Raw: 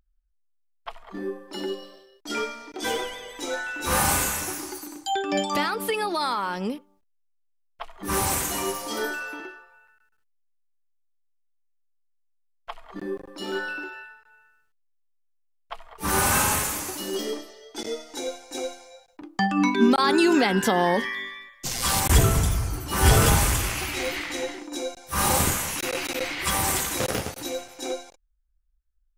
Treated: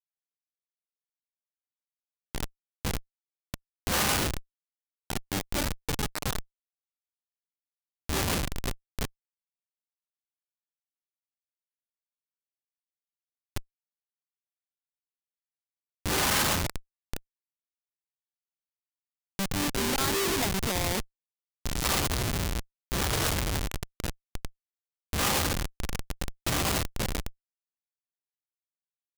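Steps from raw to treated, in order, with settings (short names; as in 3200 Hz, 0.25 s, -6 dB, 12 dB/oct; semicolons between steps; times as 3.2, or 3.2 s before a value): formant shift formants +2 st; Schmitt trigger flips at -19 dBFS; high shelf 2100 Hz +12 dB; gain -2.5 dB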